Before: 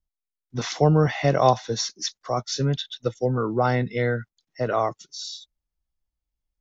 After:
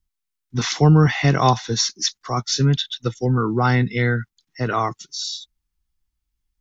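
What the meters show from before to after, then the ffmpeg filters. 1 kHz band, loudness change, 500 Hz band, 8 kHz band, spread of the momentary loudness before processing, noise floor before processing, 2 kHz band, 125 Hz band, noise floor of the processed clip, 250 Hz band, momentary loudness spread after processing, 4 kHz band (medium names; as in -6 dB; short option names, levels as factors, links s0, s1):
+2.5 dB, +4.0 dB, -1.5 dB, no reading, 15 LU, under -85 dBFS, +6.5 dB, +6.5 dB, -81 dBFS, +6.0 dB, 13 LU, +7.0 dB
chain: -af "equalizer=f=580:t=o:w=0.65:g=-15,volume=2.24"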